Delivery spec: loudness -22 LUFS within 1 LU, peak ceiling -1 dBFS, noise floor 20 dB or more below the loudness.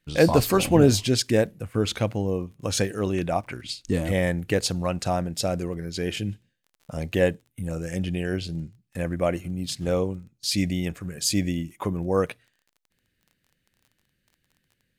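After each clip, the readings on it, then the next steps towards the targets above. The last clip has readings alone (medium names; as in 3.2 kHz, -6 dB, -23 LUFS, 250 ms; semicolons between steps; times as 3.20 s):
tick rate 23 per s; loudness -25.5 LUFS; peak level -3.5 dBFS; loudness target -22.0 LUFS
-> de-click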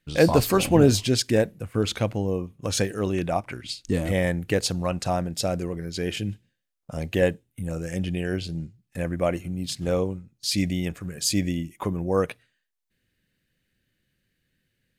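tick rate 0 per s; loudness -25.5 LUFS; peak level -3.5 dBFS; loudness target -22.0 LUFS
-> trim +3.5 dB; peak limiter -1 dBFS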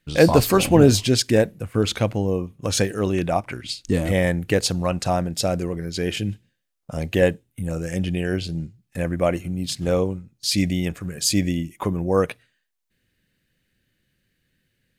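loudness -22.0 LUFS; peak level -1.0 dBFS; noise floor -74 dBFS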